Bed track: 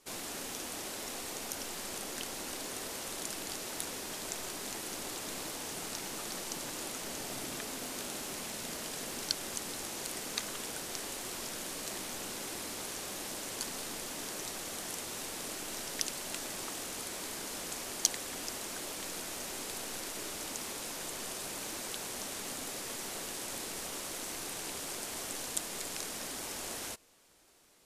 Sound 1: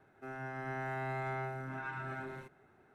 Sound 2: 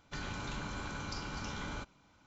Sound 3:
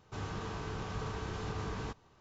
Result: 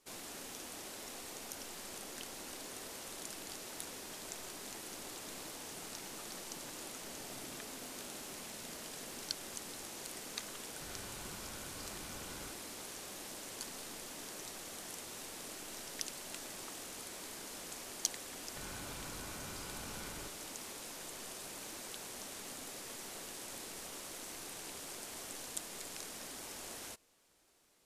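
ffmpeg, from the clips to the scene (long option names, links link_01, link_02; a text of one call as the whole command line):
ffmpeg -i bed.wav -i cue0.wav -i cue1.wav -filter_complex "[2:a]asplit=2[link_01][link_02];[0:a]volume=-6.5dB[link_03];[link_02]acompressor=threshold=-46dB:ratio=6:attack=15:release=26:knee=1:detection=peak[link_04];[link_01]atrim=end=2.26,asetpts=PTS-STARTPTS,volume=-11.5dB,afade=type=in:duration=0.004:curve=hsin,afade=type=out:start_time=2.256:duration=0.004:curve=hsin,adelay=10680[link_05];[link_04]atrim=end=2.26,asetpts=PTS-STARTPTS,volume=-4.5dB,afade=type=in:duration=0.004:curve=hsin,afade=type=out:start_time=2.256:duration=0.004:curve=hsin,adelay=813204S[link_06];[link_03][link_05][link_06]amix=inputs=3:normalize=0" out.wav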